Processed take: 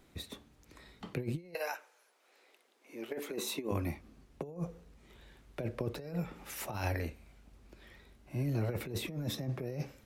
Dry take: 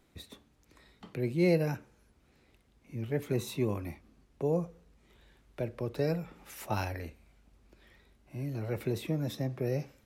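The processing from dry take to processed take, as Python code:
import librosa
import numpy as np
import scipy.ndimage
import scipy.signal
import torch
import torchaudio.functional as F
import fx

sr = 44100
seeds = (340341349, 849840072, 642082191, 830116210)

y = fx.highpass(x, sr, hz=fx.line((1.53, 700.0), (3.71, 220.0)), slope=24, at=(1.53, 3.71), fade=0.02)
y = fx.over_compress(y, sr, threshold_db=-35.0, ratio=-0.5)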